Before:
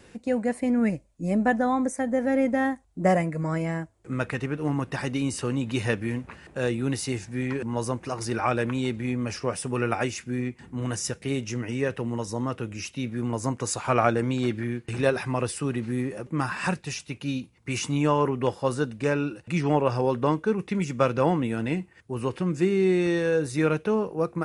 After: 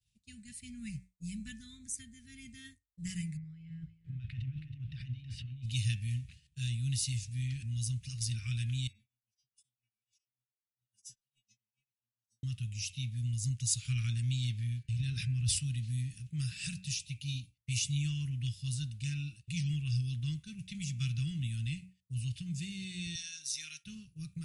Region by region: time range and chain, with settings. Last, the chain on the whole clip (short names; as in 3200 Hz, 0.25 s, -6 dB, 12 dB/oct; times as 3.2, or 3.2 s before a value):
3.37–5.66 negative-ratio compressor -35 dBFS + air absorption 380 m + echo 0.322 s -8.5 dB
8.87–12.43 metallic resonator 210 Hz, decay 0.49 s, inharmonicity 0.002 + beating tremolo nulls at 7.2 Hz
14.83–15.59 LPF 9000 Hz + high shelf 2000 Hz -9.5 dB + sustainer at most 58 dB/s
23.15–23.84 HPF 770 Hz + bell 5700 Hz +13.5 dB 0.27 oct
whole clip: Chebyshev band-stop 130–3200 Hz, order 3; de-hum 92.54 Hz, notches 29; expander -45 dBFS